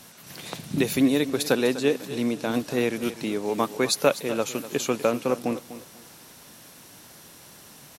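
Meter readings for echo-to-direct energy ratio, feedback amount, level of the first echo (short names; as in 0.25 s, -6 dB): -13.5 dB, 24%, -14.0 dB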